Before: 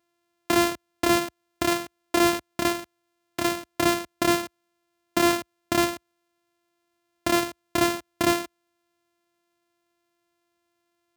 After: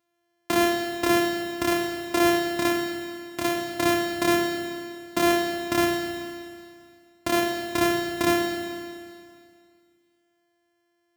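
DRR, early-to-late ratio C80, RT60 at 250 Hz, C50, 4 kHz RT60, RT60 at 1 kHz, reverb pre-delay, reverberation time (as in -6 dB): 2.5 dB, 5.0 dB, 2.2 s, 4.0 dB, 2.2 s, 2.2 s, 22 ms, 2.2 s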